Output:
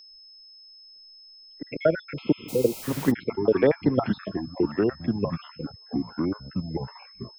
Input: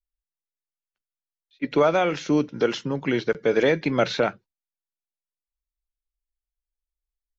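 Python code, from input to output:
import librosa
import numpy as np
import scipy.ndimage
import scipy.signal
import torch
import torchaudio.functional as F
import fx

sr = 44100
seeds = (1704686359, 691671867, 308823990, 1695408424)

p1 = fx.spec_dropout(x, sr, seeds[0], share_pct=60)
p2 = fx.high_shelf(p1, sr, hz=3200.0, db=-7.5)
p3 = fx.level_steps(p2, sr, step_db=24)
p4 = p2 + (p3 * librosa.db_to_amplitude(2.5))
p5 = fx.air_absorb(p4, sr, metres=440.0)
p6 = fx.echo_pitch(p5, sr, ms=216, semitones=-4, count=3, db_per_echo=-6.0)
p7 = p6 + 10.0 ** (-50.0 / 20.0) * np.sin(2.0 * np.pi * 5200.0 * np.arange(len(p6)) / sr)
p8 = fx.quant_dither(p7, sr, seeds[1], bits=6, dither='triangular', at=(2.48, 3.1), fade=0.02)
p9 = fx.spec_repair(p8, sr, seeds[2], start_s=2.22, length_s=0.58, low_hz=980.0, high_hz=3600.0, source='before')
y = fx.band_squash(p9, sr, depth_pct=40)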